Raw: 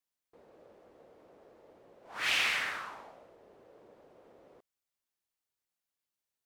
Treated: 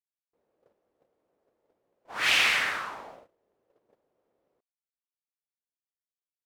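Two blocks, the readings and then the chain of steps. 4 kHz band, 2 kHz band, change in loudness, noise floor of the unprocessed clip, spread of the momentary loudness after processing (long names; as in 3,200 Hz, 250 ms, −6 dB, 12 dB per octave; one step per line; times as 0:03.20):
+6.5 dB, +6.5 dB, +7.0 dB, below −85 dBFS, 18 LU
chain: noise gate −54 dBFS, range −24 dB
level +6.5 dB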